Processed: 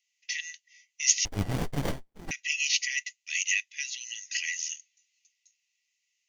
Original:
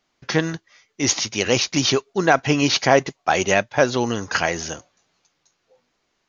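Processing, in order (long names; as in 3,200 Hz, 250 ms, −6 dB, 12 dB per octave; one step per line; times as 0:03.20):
Chebyshev high-pass with heavy ripple 1,900 Hz, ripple 9 dB
0:01.25–0:02.31: windowed peak hold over 33 samples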